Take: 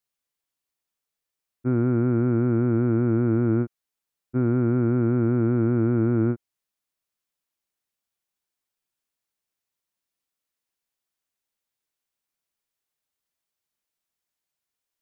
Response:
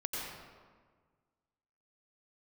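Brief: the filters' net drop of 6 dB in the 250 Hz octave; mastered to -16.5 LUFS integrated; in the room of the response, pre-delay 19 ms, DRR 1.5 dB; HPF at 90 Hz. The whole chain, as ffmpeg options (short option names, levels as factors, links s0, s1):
-filter_complex "[0:a]highpass=90,equalizer=f=250:t=o:g=-7.5,asplit=2[s0][s1];[1:a]atrim=start_sample=2205,adelay=19[s2];[s1][s2]afir=irnorm=-1:irlink=0,volume=0.562[s3];[s0][s3]amix=inputs=2:normalize=0,volume=2.66"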